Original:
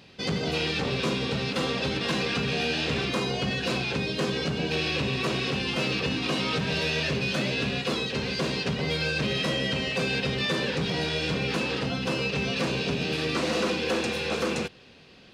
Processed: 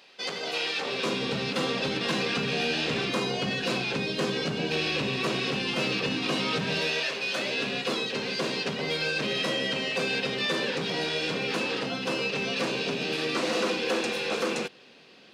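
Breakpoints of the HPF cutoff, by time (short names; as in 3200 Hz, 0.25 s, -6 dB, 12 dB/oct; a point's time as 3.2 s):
0.78 s 540 Hz
1.27 s 160 Hz
6.75 s 160 Hz
7.12 s 600 Hz
7.74 s 240 Hz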